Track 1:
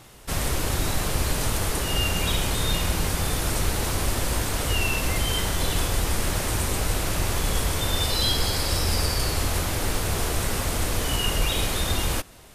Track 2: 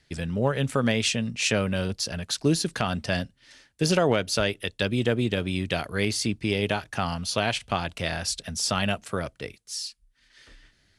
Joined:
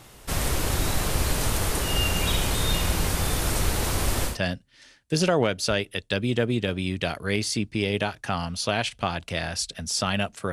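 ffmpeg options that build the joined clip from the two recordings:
ffmpeg -i cue0.wav -i cue1.wav -filter_complex "[0:a]apad=whole_dur=10.52,atrim=end=10.52,atrim=end=4.38,asetpts=PTS-STARTPTS[link_01];[1:a]atrim=start=2.93:end=9.21,asetpts=PTS-STARTPTS[link_02];[link_01][link_02]acrossfade=duration=0.14:curve1=tri:curve2=tri" out.wav

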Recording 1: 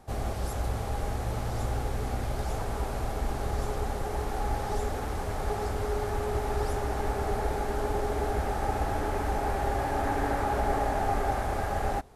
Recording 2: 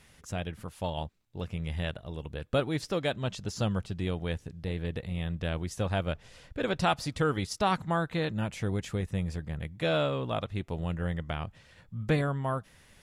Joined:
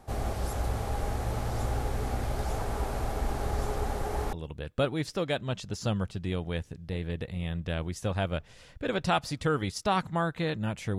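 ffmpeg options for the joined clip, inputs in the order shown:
ffmpeg -i cue0.wav -i cue1.wav -filter_complex "[0:a]apad=whole_dur=10.98,atrim=end=10.98,atrim=end=4.332[link_01];[1:a]atrim=start=2.078:end=8.73[link_02];[link_01][link_02]acrossfade=duration=0.004:curve1=hsin:curve2=hsin" out.wav

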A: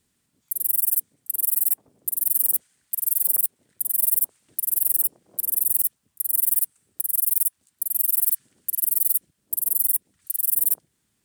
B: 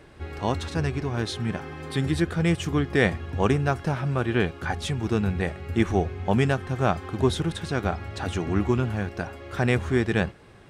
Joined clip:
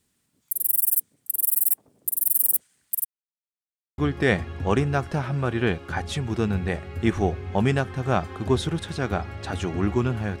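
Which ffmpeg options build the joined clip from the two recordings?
ffmpeg -i cue0.wav -i cue1.wav -filter_complex "[0:a]apad=whole_dur=10.4,atrim=end=10.4,asplit=2[link_01][link_02];[link_01]atrim=end=3.05,asetpts=PTS-STARTPTS,afade=type=out:start_time=3.046:duration=0.004:curve=hsin[link_03];[link_02]atrim=start=3.05:end=3.98,asetpts=PTS-STARTPTS,volume=0[link_04];[1:a]atrim=start=2.71:end=9.13,asetpts=PTS-STARTPTS,afade=type=in:duration=0.004:curve=hsin[link_05];[link_03][link_04][link_05]concat=n=3:v=0:a=1" out.wav

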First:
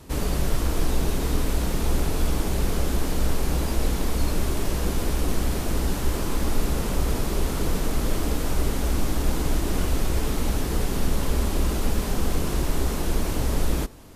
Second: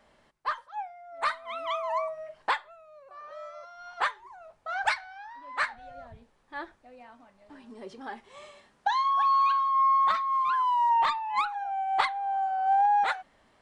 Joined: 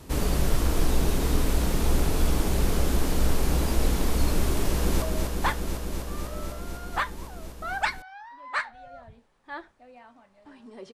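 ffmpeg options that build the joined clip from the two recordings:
ffmpeg -i cue0.wav -i cue1.wav -filter_complex "[0:a]apad=whole_dur=10.93,atrim=end=10.93,atrim=end=5.022[link_01];[1:a]atrim=start=2.058:end=7.97[link_02];[link_01][link_02]acrossfade=duration=0.004:curve1=hsin:curve2=hsin,asplit=2[link_03][link_04];[link_04]afade=type=in:start_time=4.67:duration=0.01,afade=type=out:start_time=5.02:duration=0.01,aecho=0:1:250|500|750|1000|1250|1500|1750|2000|2250|2500|2750|3000:0.630957|0.536314|0.455867|0.387487|0.329364|0.279959|0.237965|0.20227|0.17193|0.14614|0.124219|0.105586[link_05];[link_03][link_05]amix=inputs=2:normalize=0" out.wav

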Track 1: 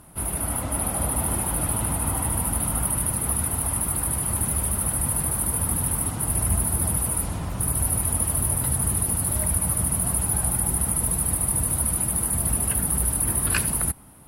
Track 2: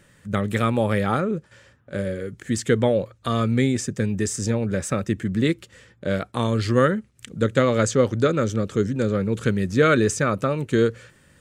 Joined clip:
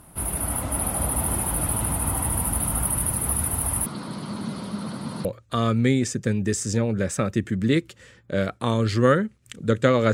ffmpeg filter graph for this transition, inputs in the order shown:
ffmpeg -i cue0.wav -i cue1.wav -filter_complex "[0:a]asettb=1/sr,asplit=3[link_01][link_02][link_03];[link_01]atrim=end=3.864[link_04];[link_02]atrim=start=3.86:end=5.25,asetpts=PTS-STARTPTS,afade=type=in:duration=0.004:curve=qsin,afade=type=out:start_time=1.386:duration=0.004:curve=qsin,highpass=frequency=150:width=0.5412,highpass=frequency=150:width=1.3066,equalizer=frequency=210:width_type=q:width=4:gain=9,equalizer=frequency=780:width_type=q:width=4:gain=-7,equalizer=frequency=1800:width_type=q:width=4:gain=-6,equalizer=frequency=2600:width_type=q:width=4:gain=-6,equalizer=frequency=4300:width_type=q:width=4:gain=10,lowpass=frequency=5600:width=0.5412,lowpass=frequency=5600:width=1.3066[link_05];[link_03]atrim=start=5.246[link_06];[link_04][link_05]acrossfade=duration=0.004:curve1=hsin:curve2=qsin[link_07];[link_07][link_06]acrossfade=duration=0.004:curve1=qsin:curve2=hsin,apad=whole_dur=10.13,atrim=end=10.13,atrim=end=5.252[link_08];[1:a]atrim=start=2.978:end=7.86[link_09];[link_08][link_09]acrossfade=duration=0.004:curve1=hsin:curve2=hsin" out.wav

